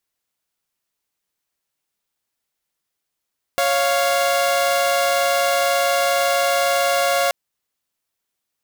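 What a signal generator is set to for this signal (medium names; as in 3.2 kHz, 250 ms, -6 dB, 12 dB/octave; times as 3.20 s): chord C#5/F5 saw, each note -16.5 dBFS 3.73 s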